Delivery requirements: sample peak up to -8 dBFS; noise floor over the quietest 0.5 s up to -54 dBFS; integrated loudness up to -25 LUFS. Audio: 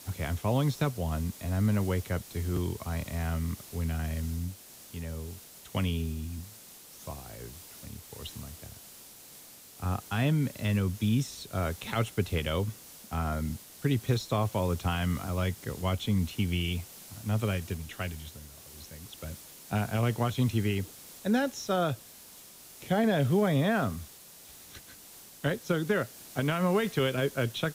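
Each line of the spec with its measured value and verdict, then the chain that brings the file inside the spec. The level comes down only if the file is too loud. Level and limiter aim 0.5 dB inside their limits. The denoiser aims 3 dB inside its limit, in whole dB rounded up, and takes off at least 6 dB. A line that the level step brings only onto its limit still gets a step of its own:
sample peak -14.5 dBFS: OK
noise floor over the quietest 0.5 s -51 dBFS: fail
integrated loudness -31.0 LUFS: OK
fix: denoiser 6 dB, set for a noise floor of -51 dBFS

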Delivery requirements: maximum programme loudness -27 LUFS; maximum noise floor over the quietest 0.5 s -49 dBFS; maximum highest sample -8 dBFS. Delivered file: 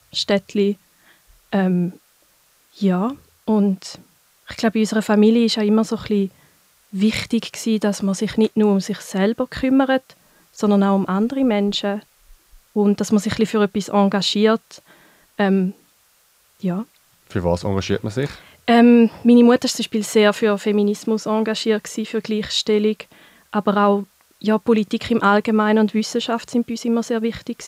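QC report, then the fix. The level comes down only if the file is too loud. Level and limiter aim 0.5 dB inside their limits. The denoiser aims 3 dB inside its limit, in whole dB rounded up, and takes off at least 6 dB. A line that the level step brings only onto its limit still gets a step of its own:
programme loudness -19.0 LUFS: fail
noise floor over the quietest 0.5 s -58 dBFS: OK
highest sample -4.5 dBFS: fail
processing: gain -8.5 dB

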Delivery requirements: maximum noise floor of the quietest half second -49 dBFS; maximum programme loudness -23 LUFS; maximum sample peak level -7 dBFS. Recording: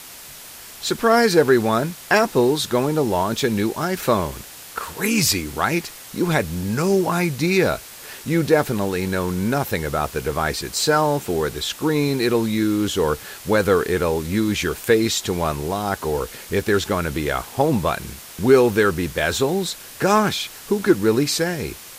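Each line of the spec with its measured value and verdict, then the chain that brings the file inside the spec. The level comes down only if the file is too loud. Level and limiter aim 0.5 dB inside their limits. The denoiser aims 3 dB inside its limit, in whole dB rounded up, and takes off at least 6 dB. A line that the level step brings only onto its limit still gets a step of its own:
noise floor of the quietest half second -40 dBFS: fail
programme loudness -20.5 LUFS: fail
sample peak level -3.5 dBFS: fail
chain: denoiser 9 dB, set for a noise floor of -40 dBFS; gain -3 dB; limiter -7.5 dBFS

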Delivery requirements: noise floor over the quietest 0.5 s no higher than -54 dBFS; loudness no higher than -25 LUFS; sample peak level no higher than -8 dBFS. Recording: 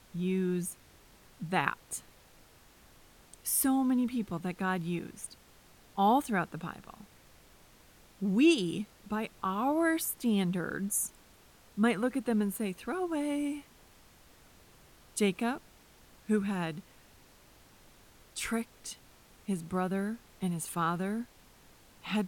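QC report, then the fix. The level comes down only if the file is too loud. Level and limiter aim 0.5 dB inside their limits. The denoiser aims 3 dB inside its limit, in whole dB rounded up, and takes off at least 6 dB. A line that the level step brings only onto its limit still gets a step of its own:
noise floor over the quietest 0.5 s -59 dBFS: OK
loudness -32.0 LUFS: OK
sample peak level -11.0 dBFS: OK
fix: none

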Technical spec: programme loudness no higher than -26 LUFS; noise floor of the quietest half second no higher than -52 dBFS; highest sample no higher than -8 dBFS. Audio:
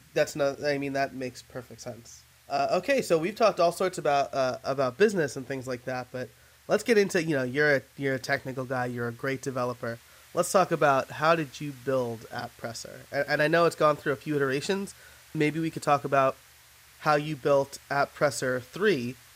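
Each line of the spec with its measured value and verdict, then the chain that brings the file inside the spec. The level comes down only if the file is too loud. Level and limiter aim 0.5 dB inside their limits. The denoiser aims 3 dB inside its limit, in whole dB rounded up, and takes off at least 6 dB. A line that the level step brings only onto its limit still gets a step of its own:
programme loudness -27.5 LUFS: OK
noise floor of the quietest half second -55 dBFS: OK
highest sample -9.0 dBFS: OK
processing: none

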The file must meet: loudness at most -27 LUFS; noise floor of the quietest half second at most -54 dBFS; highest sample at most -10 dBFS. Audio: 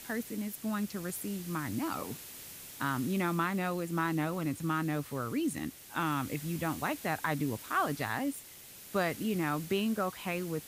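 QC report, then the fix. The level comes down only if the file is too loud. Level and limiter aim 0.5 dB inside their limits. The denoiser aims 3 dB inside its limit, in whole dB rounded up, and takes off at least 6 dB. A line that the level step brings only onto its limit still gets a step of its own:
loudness -34.0 LUFS: OK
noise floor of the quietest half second -51 dBFS: fail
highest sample -17.0 dBFS: OK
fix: denoiser 6 dB, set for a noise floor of -51 dBFS

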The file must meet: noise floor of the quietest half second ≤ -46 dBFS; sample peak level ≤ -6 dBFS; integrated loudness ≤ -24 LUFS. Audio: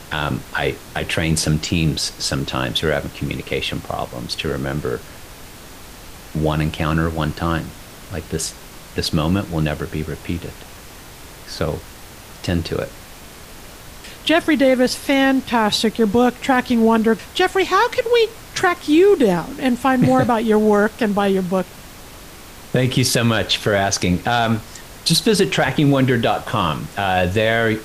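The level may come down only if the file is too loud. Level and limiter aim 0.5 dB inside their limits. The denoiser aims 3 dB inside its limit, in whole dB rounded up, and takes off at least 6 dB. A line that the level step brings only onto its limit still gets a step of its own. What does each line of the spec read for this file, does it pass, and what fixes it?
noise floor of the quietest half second -38 dBFS: fail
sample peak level -5.0 dBFS: fail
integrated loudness -18.5 LUFS: fail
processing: denoiser 6 dB, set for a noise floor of -38 dBFS; gain -6 dB

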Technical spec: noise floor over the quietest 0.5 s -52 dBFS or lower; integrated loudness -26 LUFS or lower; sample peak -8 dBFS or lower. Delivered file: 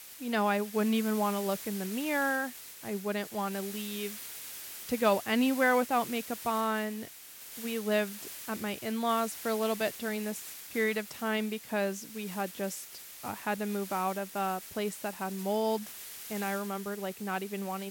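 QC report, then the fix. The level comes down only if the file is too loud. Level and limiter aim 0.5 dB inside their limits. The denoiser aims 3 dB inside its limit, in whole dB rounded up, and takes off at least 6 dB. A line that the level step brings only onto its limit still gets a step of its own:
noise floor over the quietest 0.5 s -48 dBFS: fail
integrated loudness -32.5 LUFS: OK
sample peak -13.0 dBFS: OK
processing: denoiser 7 dB, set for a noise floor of -48 dBFS

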